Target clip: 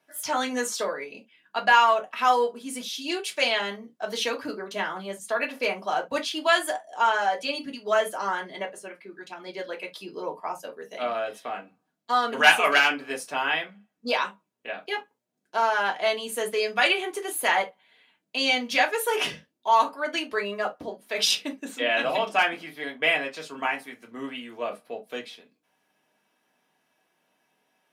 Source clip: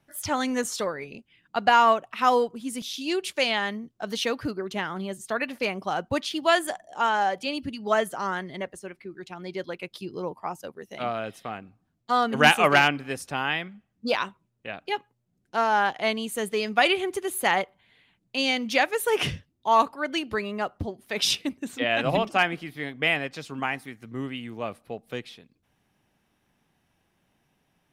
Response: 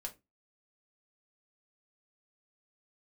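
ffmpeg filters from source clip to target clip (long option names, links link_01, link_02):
-filter_complex "[0:a]highpass=300,acrossover=split=1000[link_01][link_02];[link_01]alimiter=limit=-22.5dB:level=0:latency=1:release=29[link_03];[link_03][link_02]amix=inputs=2:normalize=0[link_04];[1:a]atrim=start_sample=2205,atrim=end_sample=3528[link_05];[link_04][link_05]afir=irnorm=-1:irlink=0,volume=4dB"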